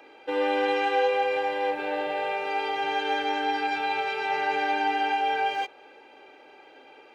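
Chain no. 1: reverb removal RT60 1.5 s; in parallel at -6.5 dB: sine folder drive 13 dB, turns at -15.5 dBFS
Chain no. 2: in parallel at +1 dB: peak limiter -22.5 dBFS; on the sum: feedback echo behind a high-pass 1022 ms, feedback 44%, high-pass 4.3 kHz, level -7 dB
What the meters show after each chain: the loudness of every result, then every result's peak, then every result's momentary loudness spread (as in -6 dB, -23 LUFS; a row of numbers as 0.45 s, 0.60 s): -22.0 LUFS, -22.0 LUFS; -13.5 dBFS, -10.5 dBFS; 5 LU, 20 LU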